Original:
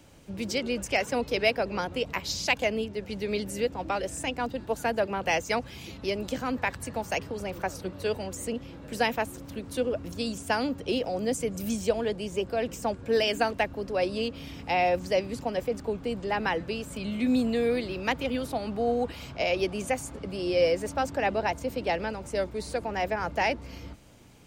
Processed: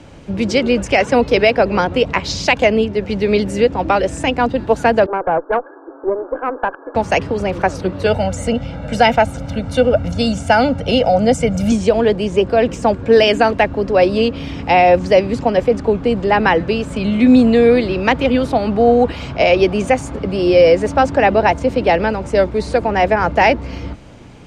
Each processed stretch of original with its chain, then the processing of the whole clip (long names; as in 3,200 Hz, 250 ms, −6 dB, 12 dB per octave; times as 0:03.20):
0:05.06–0:06.95: linear-phase brick-wall band-pass 280–1,700 Hz + tube saturation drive 21 dB, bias 0.55
0:08.06–0:11.72: comb filter 1.4 ms, depth 78% + hard clipping −13.5 dBFS
whole clip: Bessel low-pass filter 7,600 Hz, order 4; high-shelf EQ 3,800 Hz −9.5 dB; boost into a limiter +16.5 dB; level −1 dB